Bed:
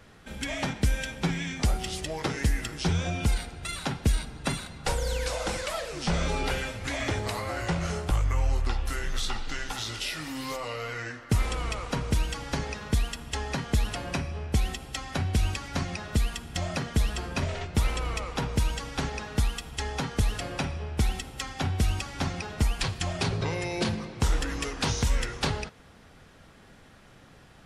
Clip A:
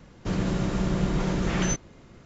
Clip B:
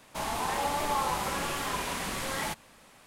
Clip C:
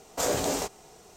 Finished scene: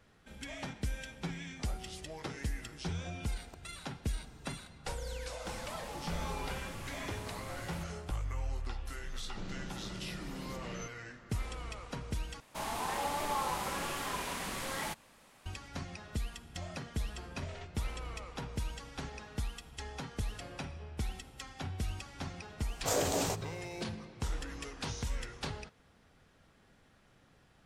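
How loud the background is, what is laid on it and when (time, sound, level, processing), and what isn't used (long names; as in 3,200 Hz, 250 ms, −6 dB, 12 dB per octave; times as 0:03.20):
bed −11.5 dB
0:03.36: mix in C −12.5 dB + gate with flip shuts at −23 dBFS, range −34 dB
0:05.30: mix in B −16 dB + bass and treble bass +11 dB, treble +1 dB
0:09.12: mix in A −9 dB + downward compressor, threshold −31 dBFS
0:12.40: overwrite with B −5 dB
0:22.68: mix in C −3 dB + speech leveller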